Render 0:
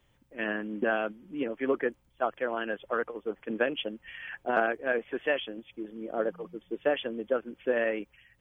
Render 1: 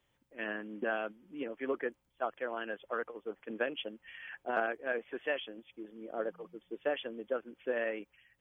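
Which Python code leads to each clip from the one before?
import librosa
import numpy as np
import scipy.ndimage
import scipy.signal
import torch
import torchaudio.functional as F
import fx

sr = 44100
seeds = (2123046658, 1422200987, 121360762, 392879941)

y = fx.low_shelf(x, sr, hz=180.0, db=-8.5)
y = y * 10.0 ** (-5.5 / 20.0)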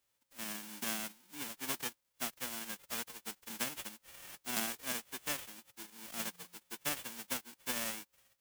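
y = fx.envelope_flatten(x, sr, power=0.1)
y = y * 10.0 ** (-4.0 / 20.0)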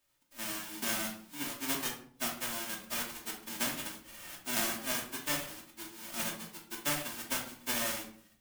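y = fx.room_shoebox(x, sr, seeds[0], volume_m3=640.0, walls='furnished', distance_m=2.7)
y = y * 10.0 ** (1.5 / 20.0)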